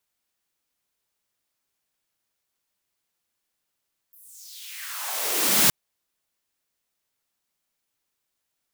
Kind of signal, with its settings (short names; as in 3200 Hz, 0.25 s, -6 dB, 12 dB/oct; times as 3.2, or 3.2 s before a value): swept filtered noise white, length 1.57 s highpass, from 14000 Hz, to 130 Hz, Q 2.9, exponential, gain ramp +38 dB